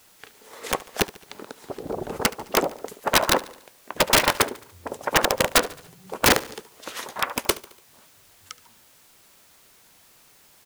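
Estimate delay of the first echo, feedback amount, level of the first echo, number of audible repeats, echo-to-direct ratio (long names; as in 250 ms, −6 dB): 72 ms, 52%, −19.5 dB, 3, −18.0 dB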